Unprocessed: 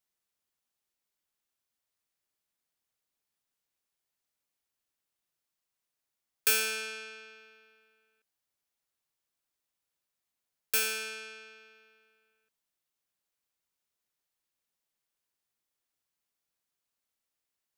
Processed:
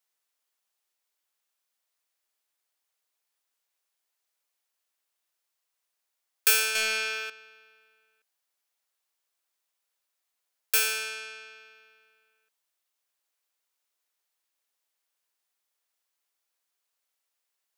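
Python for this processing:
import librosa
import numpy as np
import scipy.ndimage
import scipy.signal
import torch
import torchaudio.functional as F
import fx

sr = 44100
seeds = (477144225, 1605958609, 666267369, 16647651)

y = scipy.signal.sosfilt(scipy.signal.butter(2, 490.0, 'highpass', fs=sr, output='sos'), x)
y = fx.leveller(y, sr, passes=3, at=(6.75, 7.3))
y = F.gain(torch.from_numpy(y), 4.5).numpy()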